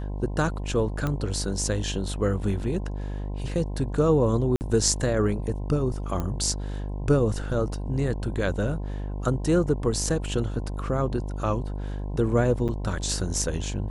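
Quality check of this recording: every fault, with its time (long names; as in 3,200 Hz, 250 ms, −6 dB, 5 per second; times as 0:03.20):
mains buzz 50 Hz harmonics 21 −31 dBFS
0:01.07: click −15 dBFS
0:04.56–0:04.61: drop-out 49 ms
0:06.20: click −17 dBFS
0:12.68–0:12.69: drop-out 7.6 ms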